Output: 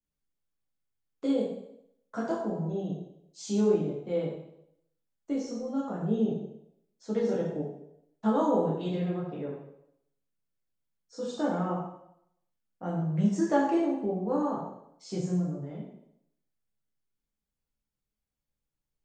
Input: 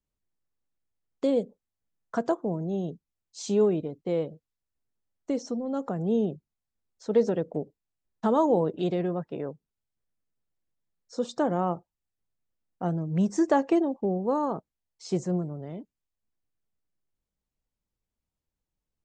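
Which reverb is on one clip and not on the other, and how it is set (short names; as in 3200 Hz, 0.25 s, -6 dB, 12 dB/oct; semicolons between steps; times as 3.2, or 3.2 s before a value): plate-style reverb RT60 0.73 s, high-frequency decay 0.95×, DRR -6.5 dB; gain -9.5 dB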